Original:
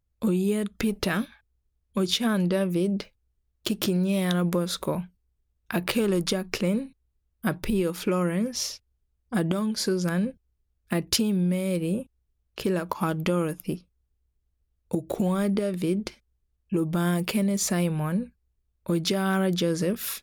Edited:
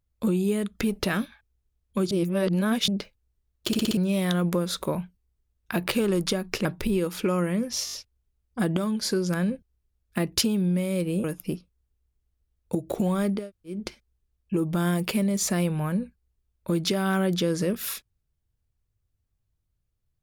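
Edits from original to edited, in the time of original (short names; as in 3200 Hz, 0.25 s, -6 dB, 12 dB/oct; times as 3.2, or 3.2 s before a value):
2.11–2.88 reverse
3.67 stutter in place 0.06 s, 5 plays
6.65–7.48 cut
8.68 stutter 0.02 s, 5 plays
11.99–13.44 cut
15.6–15.96 room tone, crossfade 0.24 s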